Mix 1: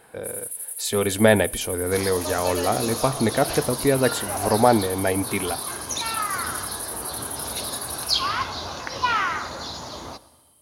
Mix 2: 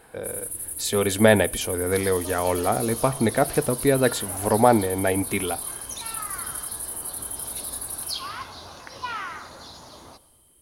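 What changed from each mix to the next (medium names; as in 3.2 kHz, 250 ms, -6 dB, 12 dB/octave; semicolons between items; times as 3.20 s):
first sound: remove inverse Chebyshev high-pass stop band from 830 Hz; second sound -9.5 dB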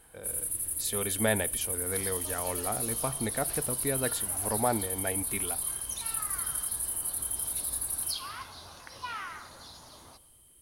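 speech -8.5 dB; second sound -5.0 dB; master: add peaking EQ 390 Hz -4.5 dB 2.5 oct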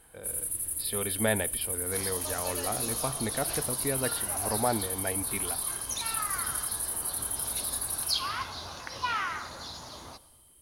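speech: add brick-wall FIR low-pass 5.3 kHz; second sound +7.5 dB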